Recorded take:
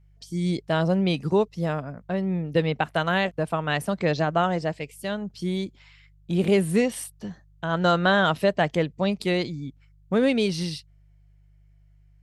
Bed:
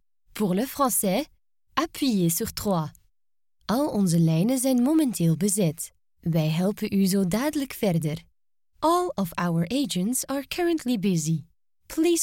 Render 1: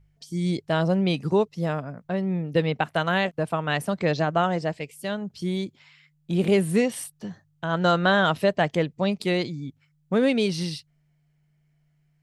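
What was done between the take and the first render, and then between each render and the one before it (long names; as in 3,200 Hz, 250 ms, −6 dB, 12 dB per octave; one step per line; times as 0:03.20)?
hum removal 50 Hz, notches 2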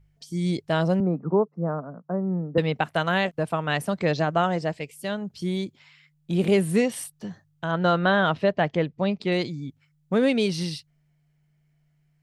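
0:01.00–0:02.58: elliptic band-pass filter 160–1,300 Hz
0:07.71–0:09.32: high-frequency loss of the air 150 metres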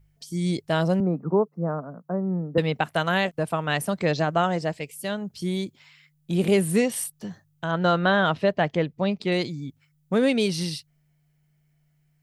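high-shelf EQ 8,800 Hz +10.5 dB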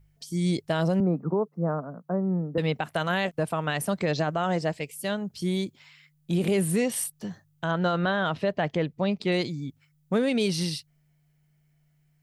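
brickwall limiter −16.5 dBFS, peak gain reduction 7 dB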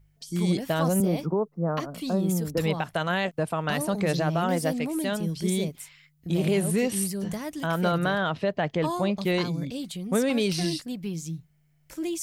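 mix in bed −9 dB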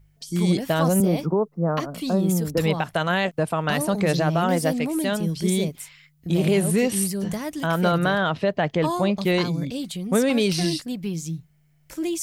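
level +4 dB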